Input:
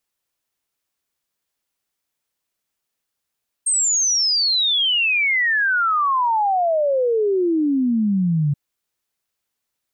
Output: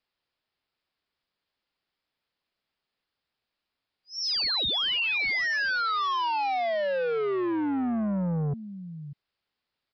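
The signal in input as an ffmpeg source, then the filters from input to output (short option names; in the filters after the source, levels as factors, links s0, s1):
-f lavfi -i "aevalsrc='0.168*clip(min(t,4.88-t)/0.01,0,1)*sin(2*PI*8600*4.88/log(140/8600)*(exp(log(140/8600)*t/4.88)-1))':d=4.88:s=44100"
-af "aecho=1:1:593:0.0944,aresample=11025,asoftclip=type=tanh:threshold=0.0501,aresample=44100"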